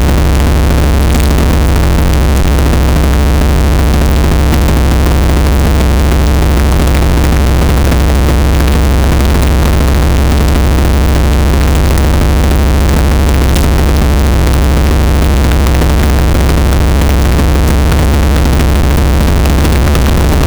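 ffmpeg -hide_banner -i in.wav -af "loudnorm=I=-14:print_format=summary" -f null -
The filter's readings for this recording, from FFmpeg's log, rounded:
Input Integrated:     -9.7 LUFS
Input True Peak:      -2.1 dBTP
Input LRA:             0.1 LU
Input Threshold:     -19.7 LUFS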